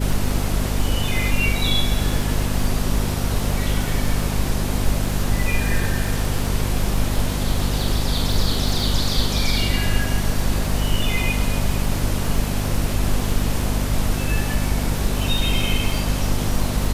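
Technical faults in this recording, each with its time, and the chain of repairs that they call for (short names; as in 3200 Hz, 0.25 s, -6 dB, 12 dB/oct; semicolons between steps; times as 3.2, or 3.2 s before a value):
crackle 36/s -25 dBFS
hum 50 Hz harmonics 5 -24 dBFS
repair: de-click; de-hum 50 Hz, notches 5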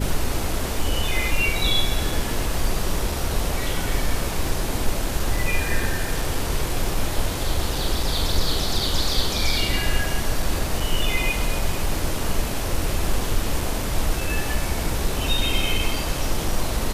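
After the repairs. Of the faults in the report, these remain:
none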